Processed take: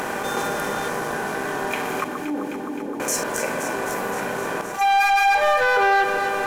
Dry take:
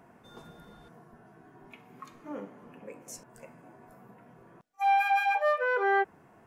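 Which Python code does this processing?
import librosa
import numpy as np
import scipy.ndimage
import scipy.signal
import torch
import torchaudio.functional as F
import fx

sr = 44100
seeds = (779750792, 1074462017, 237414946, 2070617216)

p1 = fx.bin_compress(x, sr, power=0.6)
p2 = fx.tilt_eq(p1, sr, slope=1.5)
p3 = fx.leveller(p2, sr, passes=2)
p4 = fx.formant_cascade(p3, sr, vowel='u', at=(2.04, 3.0))
p5 = p4 + fx.echo_alternate(p4, sr, ms=130, hz=1400.0, feedback_pct=82, wet_db=-10.0, dry=0)
y = fx.env_flatten(p5, sr, amount_pct=50)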